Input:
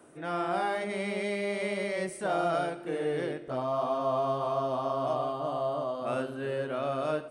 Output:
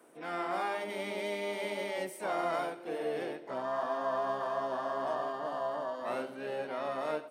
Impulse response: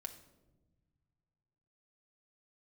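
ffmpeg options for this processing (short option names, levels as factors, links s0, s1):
-filter_complex "[0:a]asplit=3[s0][s1][s2];[s1]asetrate=52444,aresample=44100,atempo=0.840896,volume=0.126[s3];[s2]asetrate=66075,aresample=44100,atempo=0.66742,volume=0.398[s4];[s0][s3][s4]amix=inputs=3:normalize=0,highpass=250,volume=0.596"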